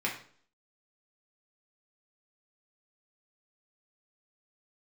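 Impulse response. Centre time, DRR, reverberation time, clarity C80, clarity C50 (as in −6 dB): 25 ms, −3.5 dB, 0.50 s, 12.0 dB, 7.5 dB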